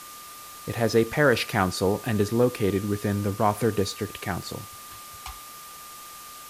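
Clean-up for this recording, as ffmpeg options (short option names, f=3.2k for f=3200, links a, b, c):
-af "bandreject=f=1.2k:w=30,afwtdn=0.0071"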